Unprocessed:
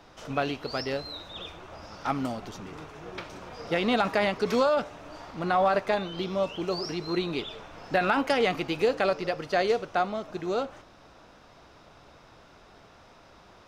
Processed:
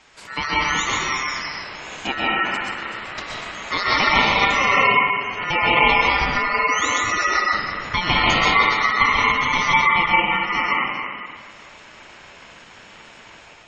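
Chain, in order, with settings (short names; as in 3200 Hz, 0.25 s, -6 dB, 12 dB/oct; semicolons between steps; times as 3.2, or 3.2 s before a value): reverse delay 0.249 s, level -10 dB; plate-style reverb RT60 1.5 s, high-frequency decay 0.25×, pre-delay 0.115 s, DRR -5 dB; AGC gain up to 3 dB; high shelf 2800 Hz +9.5 dB; ring modulator 1600 Hz; spectral gate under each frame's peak -25 dB strong; 6.21–7.95 low shelf 350 Hz +10.5 dB; gain +1.5 dB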